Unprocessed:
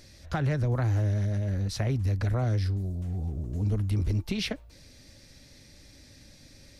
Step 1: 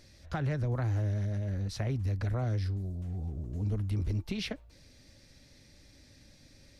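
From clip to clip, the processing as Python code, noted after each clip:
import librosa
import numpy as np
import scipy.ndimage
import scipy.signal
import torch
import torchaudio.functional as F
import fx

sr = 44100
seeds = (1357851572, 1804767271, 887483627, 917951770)

y = fx.high_shelf(x, sr, hz=6800.0, db=-4.5)
y = y * librosa.db_to_amplitude(-4.5)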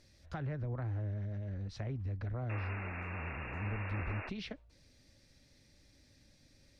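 y = fx.env_lowpass_down(x, sr, base_hz=2300.0, full_db=-27.5)
y = fx.spec_paint(y, sr, seeds[0], shape='noise', start_s=2.49, length_s=1.81, low_hz=200.0, high_hz=2800.0, level_db=-38.0)
y = y * librosa.db_to_amplitude(-7.0)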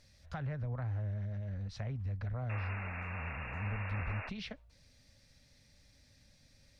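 y = fx.peak_eq(x, sr, hz=340.0, db=-12.5, octaves=0.56)
y = y * librosa.db_to_amplitude(1.0)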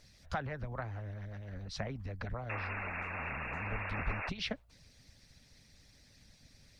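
y = fx.hpss(x, sr, part='harmonic', gain_db=-15)
y = y * librosa.db_to_amplitude(8.5)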